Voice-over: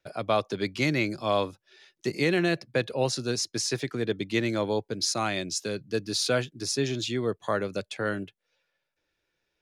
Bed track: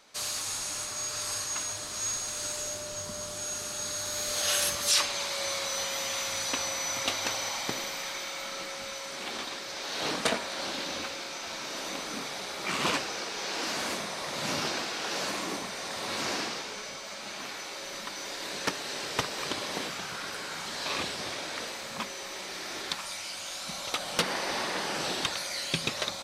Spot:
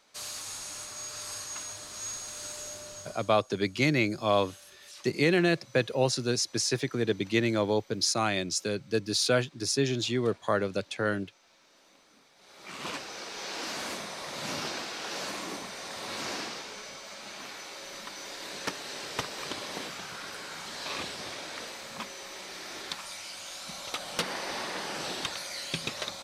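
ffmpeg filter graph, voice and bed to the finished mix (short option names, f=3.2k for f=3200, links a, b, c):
-filter_complex "[0:a]adelay=3000,volume=0.5dB[a];[1:a]volume=16dB,afade=t=out:st=2.88:d=0.52:silence=0.105925,afade=t=in:st=12.36:d=1.06:silence=0.0841395[b];[a][b]amix=inputs=2:normalize=0"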